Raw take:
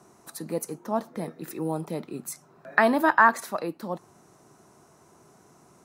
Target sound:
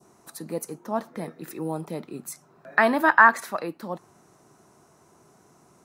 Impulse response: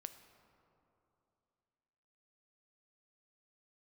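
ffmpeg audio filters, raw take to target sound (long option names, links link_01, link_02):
-af "adynamicequalizer=threshold=0.02:dfrequency=1800:dqfactor=0.88:tfrequency=1800:tqfactor=0.88:attack=5:release=100:ratio=0.375:range=3:mode=boostabove:tftype=bell,volume=-1dB"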